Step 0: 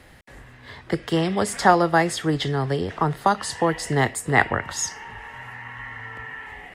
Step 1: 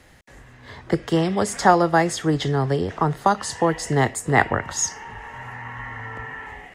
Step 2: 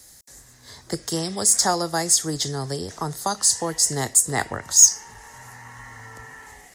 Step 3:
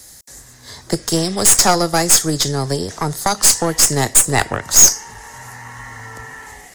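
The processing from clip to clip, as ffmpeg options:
ffmpeg -i in.wav -filter_complex "[0:a]equalizer=frequency=6500:width_type=o:width=0.55:gain=6.5,acrossover=split=1400[link_01][link_02];[link_01]dynaudnorm=framelen=430:gausssize=3:maxgain=8.5dB[link_03];[link_03][link_02]amix=inputs=2:normalize=0,volume=-2.5dB" out.wav
ffmpeg -i in.wav -af "aexciter=amount=7.2:drive=8.4:freq=4200,volume=-7.5dB" out.wav
ffmpeg -i in.wav -af "aeval=exprs='0.891*(cos(1*acos(clip(val(0)/0.891,-1,1)))-cos(1*PI/2))+0.141*(cos(6*acos(clip(val(0)/0.891,-1,1)))-cos(6*PI/2))':channel_layout=same,volume=9dB,asoftclip=hard,volume=-9dB,volume=7.5dB" out.wav

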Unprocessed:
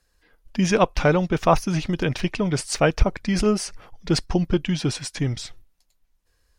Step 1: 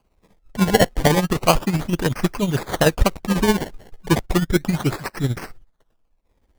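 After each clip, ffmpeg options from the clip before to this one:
ffmpeg -i in.wav -af "acrusher=samples=24:mix=1:aa=0.000001:lfo=1:lforange=24:lforate=0.33,tremolo=f=16:d=0.61,volume=5dB" out.wav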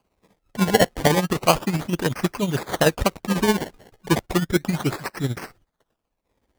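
ffmpeg -i in.wav -af "highpass=frequency=130:poles=1,volume=-1dB" out.wav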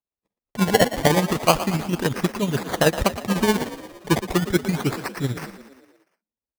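ffmpeg -i in.wav -filter_complex "[0:a]agate=range=-29dB:threshold=-54dB:ratio=16:detection=peak,asplit=2[link_01][link_02];[link_02]asplit=6[link_03][link_04][link_05][link_06][link_07][link_08];[link_03]adelay=116,afreqshift=34,volume=-13dB[link_09];[link_04]adelay=232,afreqshift=68,volume=-17.9dB[link_10];[link_05]adelay=348,afreqshift=102,volume=-22.8dB[link_11];[link_06]adelay=464,afreqshift=136,volume=-27.6dB[link_12];[link_07]adelay=580,afreqshift=170,volume=-32.5dB[link_13];[link_08]adelay=696,afreqshift=204,volume=-37.4dB[link_14];[link_09][link_10][link_11][link_12][link_13][link_14]amix=inputs=6:normalize=0[link_15];[link_01][link_15]amix=inputs=2:normalize=0" out.wav

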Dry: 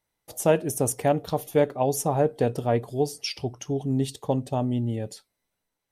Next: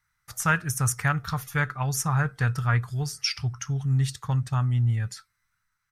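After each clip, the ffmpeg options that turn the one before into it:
ffmpeg -i in.wav -af "firequalizer=gain_entry='entry(130,0);entry(260,-22);entry(580,-25);entry(1300,9);entry(3000,-9);entry(5400,-2);entry(10000,-8)':delay=0.05:min_phase=1,volume=7dB" out.wav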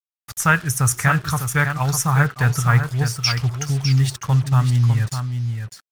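ffmpeg -i in.wav -af "acrusher=bits=6:mix=0:aa=0.5,aecho=1:1:603:0.422,volume=6.5dB" out.wav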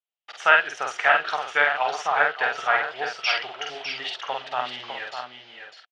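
ffmpeg -i in.wav -filter_complex "[0:a]highpass=frequency=450:width=0.5412,highpass=frequency=450:width=1.3066,equalizer=frequency=700:width_type=q:width=4:gain=7,equalizer=frequency=1100:width_type=q:width=4:gain=-6,equalizer=frequency=3000:width_type=q:width=4:gain=8,lowpass=frequency=3800:width=0.5412,lowpass=frequency=3800:width=1.3066,asplit=2[link_01][link_02];[link_02]adelay=48,volume=-3dB[link_03];[link_01][link_03]amix=inputs=2:normalize=0" out.wav

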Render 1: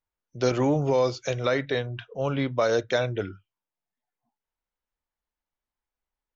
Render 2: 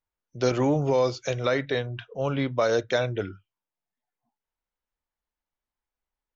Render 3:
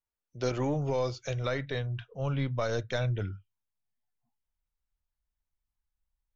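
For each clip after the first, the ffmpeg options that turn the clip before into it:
ffmpeg -i in.wav -af anull out.wav
ffmpeg -i in.wav -af "aeval=exprs='0.237*(cos(1*acos(clip(val(0)/0.237,-1,1)))-cos(1*PI/2))+0.00531*(cos(4*acos(clip(val(0)/0.237,-1,1)))-cos(4*PI/2))':channel_layout=same,asubboost=boost=7:cutoff=140,volume=-6.5dB" out.wav

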